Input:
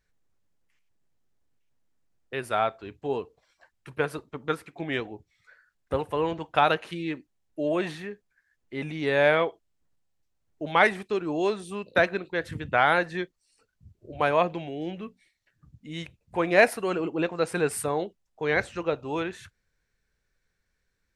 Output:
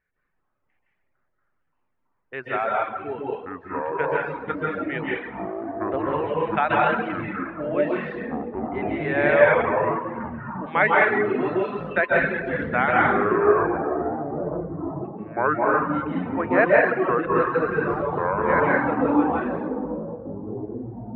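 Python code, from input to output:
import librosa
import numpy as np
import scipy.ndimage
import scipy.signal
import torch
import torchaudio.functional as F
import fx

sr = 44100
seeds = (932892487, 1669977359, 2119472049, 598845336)

y = fx.ladder_lowpass(x, sr, hz=fx.steps((0.0, 2500.0), (12.91, 420.0), (15.04, 2000.0)), resonance_pct=35)
y = fx.rev_plate(y, sr, seeds[0], rt60_s=1.5, hf_ratio=0.8, predelay_ms=115, drr_db=-5.5)
y = fx.dereverb_blind(y, sr, rt60_s=1.1)
y = fx.echo_pitch(y, sr, ms=165, semitones=-6, count=3, db_per_echo=-3.0)
y = fx.low_shelf(y, sr, hz=100.0, db=-9.5)
y = F.gain(torch.from_numpy(y), 5.5).numpy()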